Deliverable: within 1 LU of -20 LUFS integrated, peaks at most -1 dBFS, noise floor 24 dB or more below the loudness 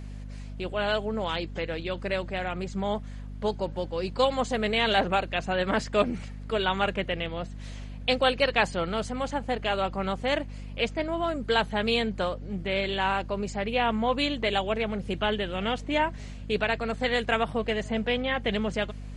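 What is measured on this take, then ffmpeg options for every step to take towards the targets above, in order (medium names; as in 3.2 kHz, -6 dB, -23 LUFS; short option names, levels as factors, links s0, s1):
hum 50 Hz; highest harmonic 250 Hz; hum level -36 dBFS; loudness -28.0 LUFS; peak level -9.5 dBFS; loudness target -20.0 LUFS
-> -af "bandreject=f=50:t=h:w=4,bandreject=f=100:t=h:w=4,bandreject=f=150:t=h:w=4,bandreject=f=200:t=h:w=4,bandreject=f=250:t=h:w=4"
-af "volume=2.51"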